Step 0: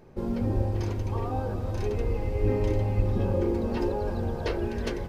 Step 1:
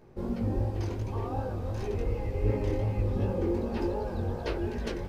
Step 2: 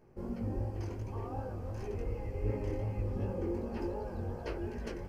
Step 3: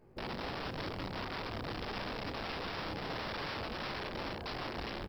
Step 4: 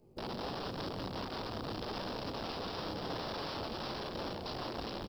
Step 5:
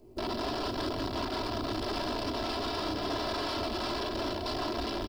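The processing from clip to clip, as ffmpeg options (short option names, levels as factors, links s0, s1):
-af "flanger=delay=15.5:depth=7.8:speed=2.7"
-af "equalizer=f=3700:t=o:w=0.25:g=-13.5,volume=0.473"
-filter_complex "[0:a]aresample=11025,aeval=exprs='(mod(56.2*val(0)+1,2)-1)/56.2':c=same,aresample=44100,acrusher=bits=8:mode=log:mix=0:aa=0.000001,asplit=2[s0][s1];[s1]adelay=32,volume=0.251[s2];[s0][s2]amix=inputs=2:normalize=0"
-filter_complex "[0:a]lowshelf=f=110:g=-7.5,acrossover=split=260|2700[s0][s1][s2];[s1]adynamicsmooth=sensitivity=3.5:basefreq=710[s3];[s0][s3][s2]amix=inputs=3:normalize=0,aecho=1:1:172:0.299,volume=1.33"
-af "aecho=1:1:3:0.75,asoftclip=type=tanh:threshold=0.0251,volume=2.11"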